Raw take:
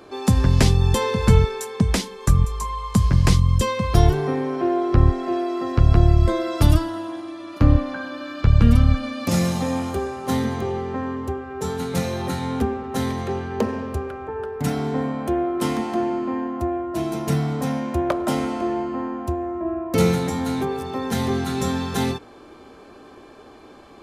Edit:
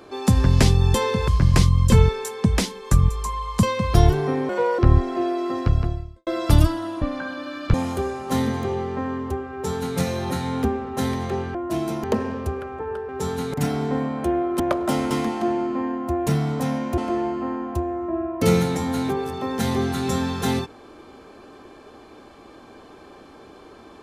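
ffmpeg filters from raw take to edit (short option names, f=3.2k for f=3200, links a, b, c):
-filter_complex "[0:a]asplit=17[a][b][c][d][e][f][g][h][i][j][k][l][m][n][o][p][q];[a]atrim=end=1.282[r];[b]atrim=start=2.988:end=3.632[s];[c]atrim=start=1.278:end=2.992[t];[d]atrim=start=3.628:end=4.494[u];[e]atrim=start=4.49:end=4.9,asetpts=PTS-STARTPTS,asetrate=60858,aresample=44100,atrim=end_sample=13102,asetpts=PTS-STARTPTS[v];[f]atrim=start=4.896:end=6.38,asetpts=PTS-STARTPTS,afade=t=out:st=0.804:d=0.68:c=qua[w];[g]atrim=start=6.38:end=7.132,asetpts=PTS-STARTPTS,afade=t=in:d=0.004:c=hsin[x];[h]atrim=start=7.758:end=8.482[y];[i]atrim=start=9.708:end=13.522[z];[j]atrim=start=16.788:end=17.282[aa];[k]atrim=start=13.518:end=14.572[ab];[l]atrim=start=11.498:end=11.952[ac];[m]atrim=start=14.568:end=15.632[ad];[n]atrim=start=17.988:end=18.502[ae];[o]atrim=start=15.628:end=16.792[af];[p]atrim=start=17.278:end=17.992[ag];[q]atrim=start=18.498[ah];[r][s]acrossfade=d=0.004:c1=hsin:c2=hsin[ai];[ai][t]acrossfade=d=0.004:c1=hsin:c2=hsin[aj];[aj][u]acrossfade=d=0.004:c1=hsin:c2=hsin[ak];[ak][v]acrossfade=d=0.004:c1=hsin:c2=hsin[al];[w][x]concat=n=2:v=0:a=1[am];[al][am]acrossfade=d=0.004:c1=hsin:c2=hsin[an];[an][y]acrossfade=d=0.004:c1=hsin:c2=hsin[ao];[ao][z]acrossfade=d=0.004:c1=hsin:c2=hsin[ap];[ap][aa]acrossfade=d=0.004:c1=hsin:c2=hsin[aq];[aq][ab]acrossfade=d=0.004:c1=hsin:c2=hsin[ar];[ar][ac]acrossfade=d=0.004:c1=hsin:c2=hsin[as];[as][ad]acrossfade=d=0.004:c1=hsin:c2=hsin[at];[at][ae]acrossfade=d=0.004:c1=hsin:c2=hsin[au];[au][af]acrossfade=d=0.004:c1=hsin:c2=hsin[av];[av][ag]acrossfade=d=0.004:c1=hsin:c2=hsin[aw];[aw][ah]acrossfade=d=0.004:c1=hsin:c2=hsin"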